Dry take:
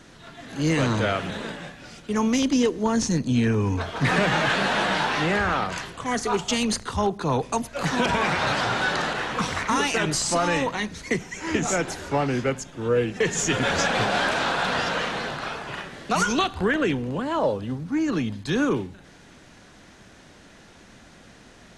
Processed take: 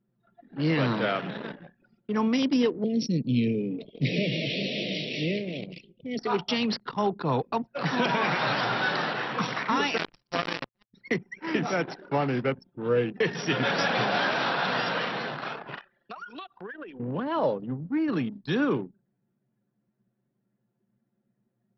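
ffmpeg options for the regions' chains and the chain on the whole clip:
-filter_complex "[0:a]asettb=1/sr,asplit=3[a][b][c];[a]atrim=end=2.844[d];[b]atrim=start=2.84:end=6.19,asetpts=PTS-STARTPTS,afade=t=in:d=0.004:c=qsin,afade=t=out:st=3.346:d=0.004:c=qsin,asuperstop=centerf=1200:order=12:qfactor=0.81,equalizer=f=760:t=o:w=0.46:g=-13.5[e];[c]atrim=start=6.186[f];[d][e]acrossfade=d=0.004:c1=hsin:c2=qsin[g];[g][f]acrossfade=d=0.004:c1=qsin:c2=hsin,asettb=1/sr,asplit=3[h][i][j];[h]atrim=end=9.974[k];[i]atrim=start=9.97:end=10.94,asetpts=PTS-STARTPTS,afade=t=in:d=0.004:c=qsin,afade=t=out:st=0.966:d=0.004:c=qsin,bandreject=f=900:w=6.8,acrusher=bits=2:mix=0:aa=0.5[l];[j]atrim=start=10.936[m];[k][l]acrossfade=d=0.004:c1=hsin:c2=qsin[n];[n][m]acrossfade=d=0.004:c1=qsin:c2=hsin,asettb=1/sr,asplit=3[o][p][q];[o]atrim=end=15.784[r];[p]atrim=start=15.78:end=17,asetpts=PTS-STARTPTS,afade=t=in:d=0.004:c=qsin,afade=t=out:st=1.216:d=0.004:c=qsin,highpass=f=770:p=1,bandreject=f=2.1k:w=19,acompressor=threshold=-31dB:ratio=10:attack=3.2:release=140:knee=1:detection=peak[s];[q]atrim=start=16.996[t];[r][s]acrossfade=d=0.004:c1=hsin:c2=qsin[u];[u][t]acrossfade=d=0.004:c1=qsin:c2=hsin,afftfilt=real='re*between(b*sr/4096,110,5800)':imag='im*between(b*sr/4096,110,5800)':win_size=4096:overlap=0.75,anlmdn=15.8,volume=-2.5dB"

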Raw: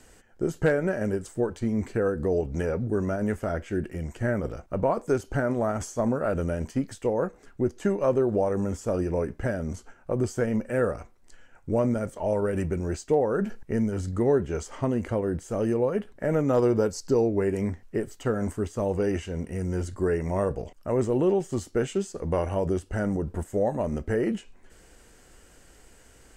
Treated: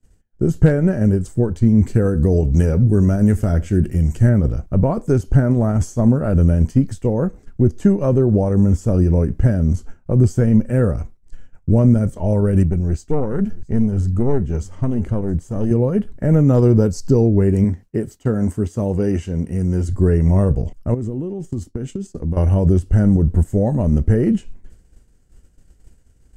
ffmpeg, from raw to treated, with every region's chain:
-filter_complex "[0:a]asettb=1/sr,asplit=3[a][b][c];[a]atrim=end=1.874[d];[b]atrim=start=1.87:end=4.29,asetpts=PTS-STARTPTS,afade=t=in:d=0.004:c=qsin,afade=t=out:st=2.416:d=0.004:c=qsin,highshelf=f=3.7k:g=8.5,aecho=1:1:78:0.0891,atrim=end_sample=106722[e];[c]atrim=start=4.286[f];[d][e]acrossfade=d=0.004:c1=hsin:c2=qsin[g];[g][f]acrossfade=d=0.004:c1=qsin:c2=hsin,asettb=1/sr,asplit=3[h][i][j];[h]atrim=end=12.634[k];[i]atrim=start=12.63:end=15.71,asetpts=PTS-STARTPTS,afade=t=in:d=0.004:c=qsin,afade=t=out:st=3.076:d=0.004:c=qsin,aeval=exprs='(tanh(6.31*val(0)+0.75)-tanh(0.75))/6.31':c=same,aecho=1:1:672:0.0794,atrim=end_sample=135828[l];[j]atrim=start=15.706[m];[k][l]acrossfade=d=0.004:c1=hsin:c2=qsin[n];[n][m]acrossfade=d=0.004:c1=qsin:c2=hsin,asettb=1/sr,asplit=3[o][p][q];[o]atrim=end=17.644[r];[p]atrim=start=17.64:end=19.89,asetpts=PTS-STARTPTS,afade=t=in:d=0.004:c=qsin,afade=t=out:st=2.246:d=0.004:c=qsin,highpass=f=190:p=1,bandreject=f=1.2k:w=29[s];[q]atrim=start=19.886[t];[r][s]acrossfade=d=0.004:c1=hsin:c2=qsin[u];[u][t]acrossfade=d=0.004:c1=qsin:c2=hsin,asettb=1/sr,asplit=3[v][w][x];[v]atrim=end=20.944[y];[w]atrim=start=20.94:end=22.37,asetpts=PTS-STARTPTS,afade=t=in:d=0.004:c=qsin,afade=t=out:st=1.426:d=0.004:c=qsin,agate=range=-8dB:threshold=-38dB:ratio=16:release=100:detection=peak,equalizer=f=280:w=1.7:g=5.5,acompressor=threshold=-32dB:ratio=8:attack=3.2:release=140:knee=1:detection=peak[z];[x]atrim=start=22.366[aa];[y][z]acrossfade=d=0.004:c1=hsin:c2=qsin[ab];[ab][aa]acrossfade=d=0.004:c1=qsin:c2=hsin,lowshelf=f=380:g=11,agate=range=-33dB:threshold=-34dB:ratio=3:detection=peak,bass=f=250:g=9,treble=f=4k:g=5,volume=-1dB"

